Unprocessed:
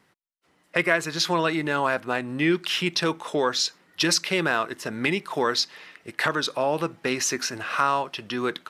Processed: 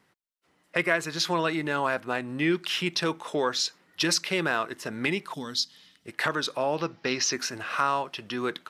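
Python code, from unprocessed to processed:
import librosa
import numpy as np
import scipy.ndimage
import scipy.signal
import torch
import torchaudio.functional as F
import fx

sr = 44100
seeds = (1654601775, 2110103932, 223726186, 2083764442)

y = fx.spec_box(x, sr, start_s=5.33, length_s=0.72, low_hz=280.0, high_hz=2900.0, gain_db=-14)
y = fx.high_shelf_res(y, sr, hz=6900.0, db=-10.5, q=3.0, at=(6.76, 7.33))
y = y * librosa.db_to_amplitude(-3.0)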